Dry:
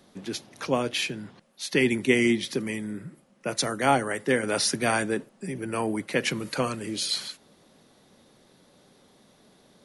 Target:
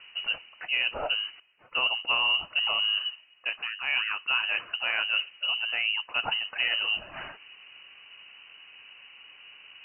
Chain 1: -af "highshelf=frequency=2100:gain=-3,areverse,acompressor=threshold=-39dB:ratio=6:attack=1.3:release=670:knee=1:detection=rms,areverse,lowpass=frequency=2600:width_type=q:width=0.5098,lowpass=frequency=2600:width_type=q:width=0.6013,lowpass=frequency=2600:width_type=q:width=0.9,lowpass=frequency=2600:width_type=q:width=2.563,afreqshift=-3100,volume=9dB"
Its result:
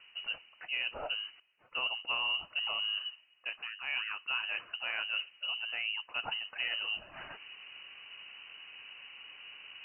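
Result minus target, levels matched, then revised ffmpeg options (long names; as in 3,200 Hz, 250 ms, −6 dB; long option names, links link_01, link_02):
downward compressor: peak gain reduction +8 dB
-af "highshelf=frequency=2100:gain=-3,areverse,acompressor=threshold=-29.5dB:ratio=6:attack=1.3:release=670:knee=1:detection=rms,areverse,lowpass=frequency=2600:width_type=q:width=0.5098,lowpass=frequency=2600:width_type=q:width=0.6013,lowpass=frequency=2600:width_type=q:width=0.9,lowpass=frequency=2600:width_type=q:width=2.563,afreqshift=-3100,volume=9dB"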